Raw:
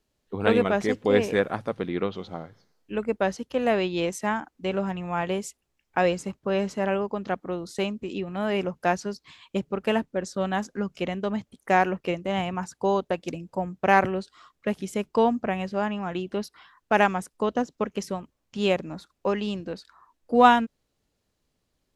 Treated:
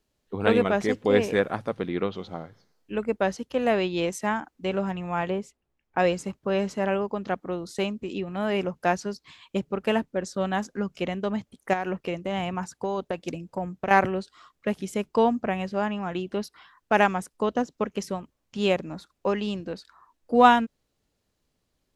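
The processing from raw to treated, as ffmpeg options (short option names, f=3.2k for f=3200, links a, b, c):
-filter_complex "[0:a]asplit=3[a][b][c];[a]afade=t=out:st=5.29:d=0.02[d];[b]lowpass=f=1.4k:p=1,afade=t=in:st=5.29:d=0.02,afade=t=out:st=5.98:d=0.02[e];[c]afade=t=in:st=5.98:d=0.02[f];[d][e][f]amix=inputs=3:normalize=0,asettb=1/sr,asplit=3[g][h][i];[g]atrim=end=11.734[j];[h]atrim=start=11.73:end=13.91,asetpts=PTS-STARTPTS,afade=t=in:d=0.004:c=qsin,afade=t=out:st=2.176:d=0.004:c=qsin,acompressor=threshold=-23dB:ratio=10:attack=3.2:release=140:knee=1:detection=peak[k];[i]atrim=start=13.906[l];[j][k]acrossfade=d=0.004:c1=hsin:c2=qsin[m];[m][l]acrossfade=d=0.004:c1=qsin:c2=hsin"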